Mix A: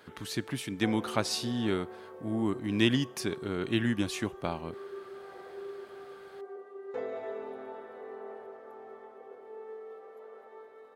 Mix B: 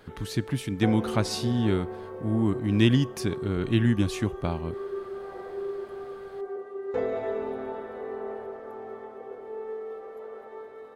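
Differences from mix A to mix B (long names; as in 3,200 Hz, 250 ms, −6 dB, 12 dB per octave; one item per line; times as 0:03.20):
background +6.0 dB
master: remove high-pass filter 370 Hz 6 dB per octave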